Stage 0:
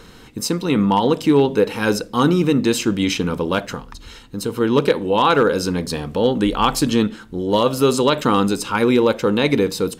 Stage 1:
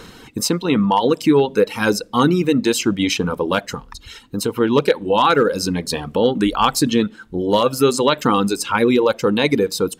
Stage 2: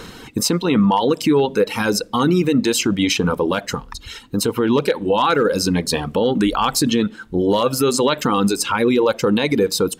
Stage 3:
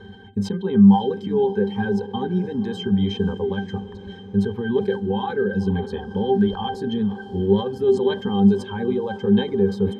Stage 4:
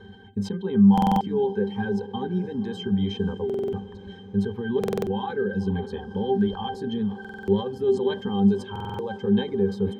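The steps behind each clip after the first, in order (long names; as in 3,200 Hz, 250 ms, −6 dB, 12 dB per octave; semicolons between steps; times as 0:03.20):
reverb reduction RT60 1.1 s; low-shelf EQ 62 Hz −8 dB; in parallel at −2 dB: downward compressor, threshold −25 dBFS, peak gain reduction 13.5 dB
brickwall limiter −11.5 dBFS, peak gain reduction 8 dB; level +3.5 dB
resonances in every octave G, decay 0.15 s; feedback delay with all-pass diffusion 516 ms, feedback 61%, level −16 dB; level that may fall only so fast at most 150 dB per second; level +6 dB
buffer that repeats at 0:00.93/0:03.45/0:04.79/0:07.20/0:08.71, samples 2,048, times 5; level −4 dB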